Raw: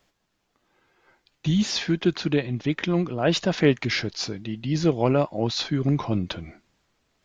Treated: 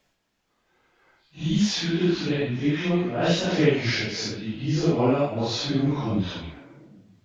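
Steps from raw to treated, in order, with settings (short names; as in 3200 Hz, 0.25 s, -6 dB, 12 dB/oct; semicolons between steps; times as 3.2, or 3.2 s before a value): phase scrambler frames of 0.2 s; on a send: delay with a stepping band-pass 0.129 s, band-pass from 2700 Hz, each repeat -0.7 oct, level -9 dB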